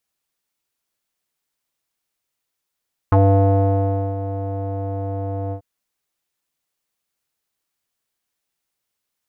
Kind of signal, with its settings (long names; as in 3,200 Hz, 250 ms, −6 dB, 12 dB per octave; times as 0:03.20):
subtractive voice square G2 12 dB per octave, low-pass 640 Hz, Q 3.9, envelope 1 octave, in 0.05 s, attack 1.9 ms, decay 1.03 s, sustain −13 dB, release 0.09 s, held 2.40 s